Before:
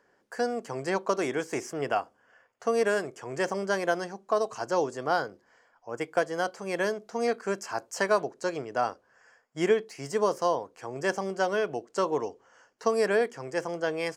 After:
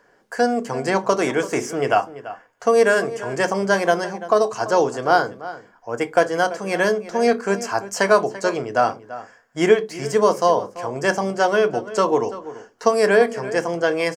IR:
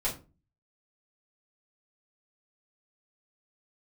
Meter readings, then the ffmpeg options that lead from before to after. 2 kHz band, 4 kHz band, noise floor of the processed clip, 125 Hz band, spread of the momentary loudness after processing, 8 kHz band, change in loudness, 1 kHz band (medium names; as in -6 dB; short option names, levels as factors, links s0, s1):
+9.5 dB, +9.0 dB, -57 dBFS, +9.5 dB, 13 LU, +9.0 dB, +9.5 dB, +10.0 dB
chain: -filter_complex "[0:a]asplit=2[s0][s1];[s1]adelay=338.2,volume=0.178,highshelf=f=4000:g=-7.61[s2];[s0][s2]amix=inputs=2:normalize=0,asplit=2[s3][s4];[1:a]atrim=start_sample=2205,asetrate=70560,aresample=44100[s5];[s4][s5]afir=irnorm=-1:irlink=0,volume=0.355[s6];[s3][s6]amix=inputs=2:normalize=0,volume=2.37"